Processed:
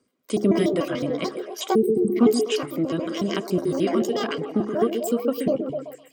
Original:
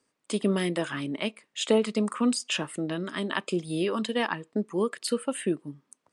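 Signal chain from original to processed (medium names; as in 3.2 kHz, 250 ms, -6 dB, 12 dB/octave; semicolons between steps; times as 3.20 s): pitch shift switched off and on +9.5 st, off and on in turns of 73 ms; bass shelf 450 Hz +10 dB; comb of notches 880 Hz; de-hum 69.28 Hz, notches 7; on a send: repeats whose band climbs or falls 127 ms, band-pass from 350 Hz, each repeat 0.7 oct, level -2 dB; on the sum: time-frequency box 1.75–2.16 s, 480–7900 Hz -28 dB; phaser 0.9 Hz, delay 3.6 ms, feedback 20%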